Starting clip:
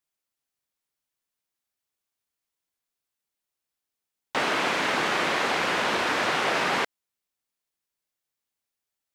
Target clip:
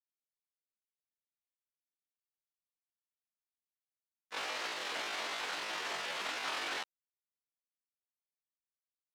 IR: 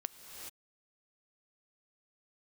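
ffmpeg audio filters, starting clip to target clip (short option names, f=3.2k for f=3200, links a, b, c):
-filter_complex "[0:a]lowpass=f=2.3k:p=1,agate=range=-33dB:threshold=-15dB:ratio=3:detection=peak,asplit=2[a][b];[b]alimiter=level_in=15dB:limit=-24dB:level=0:latency=1:release=13,volume=-15dB,volume=-1.5dB[c];[a][c]amix=inputs=2:normalize=0,asetrate=83250,aresample=44100,atempo=0.529732,volume=1dB"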